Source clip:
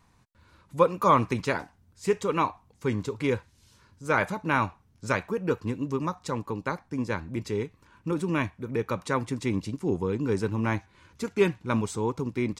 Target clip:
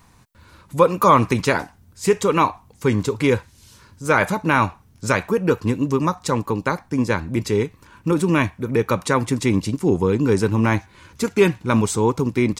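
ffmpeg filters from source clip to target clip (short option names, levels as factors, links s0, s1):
-filter_complex "[0:a]asplit=2[s0][s1];[s1]alimiter=limit=0.126:level=0:latency=1:release=92,volume=1.19[s2];[s0][s2]amix=inputs=2:normalize=0,highshelf=f=9300:g=8.5,volume=1.41"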